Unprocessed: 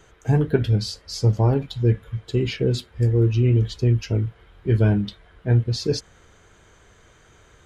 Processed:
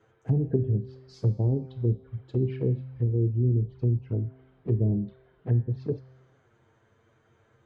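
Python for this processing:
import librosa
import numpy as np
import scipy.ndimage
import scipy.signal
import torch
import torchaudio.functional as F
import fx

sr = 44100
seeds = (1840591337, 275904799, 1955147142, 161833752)

y = fx.lowpass(x, sr, hz=1000.0, slope=6)
y = fx.env_lowpass_down(y, sr, base_hz=430.0, full_db=-15.5)
y = scipy.signal.sosfilt(scipy.signal.butter(2, 87.0, 'highpass', fs=sr, output='sos'), y)
y = fx.env_flanger(y, sr, rest_ms=9.5, full_db=-19.0)
y = fx.comb_fb(y, sr, f0_hz=130.0, decay_s=1.2, harmonics='all', damping=0.0, mix_pct=70)
y = y * 10.0 ** (5.0 / 20.0)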